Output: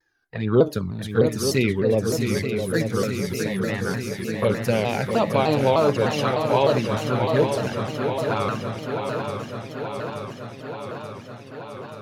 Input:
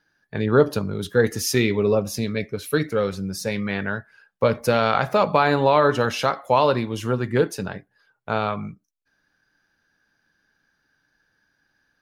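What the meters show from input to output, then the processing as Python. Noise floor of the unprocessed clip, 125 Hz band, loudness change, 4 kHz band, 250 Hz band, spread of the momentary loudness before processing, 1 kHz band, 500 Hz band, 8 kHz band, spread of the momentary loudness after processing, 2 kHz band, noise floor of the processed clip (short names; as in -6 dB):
-72 dBFS, +2.0 dB, -1.5 dB, -0.5 dB, +1.0 dB, 10 LU, -3.0 dB, 0.0 dB, -1.0 dB, 15 LU, -2.5 dB, -40 dBFS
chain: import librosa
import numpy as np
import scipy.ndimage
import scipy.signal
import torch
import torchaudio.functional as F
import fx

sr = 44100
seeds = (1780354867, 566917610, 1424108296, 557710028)

y = fx.env_flanger(x, sr, rest_ms=2.6, full_db=-13.5)
y = fx.echo_swing(y, sr, ms=880, ratio=3, feedback_pct=70, wet_db=-7.0)
y = fx.vibrato_shape(y, sr, shape='saw_down', rate_hz=3.3, depth_cents=160.0)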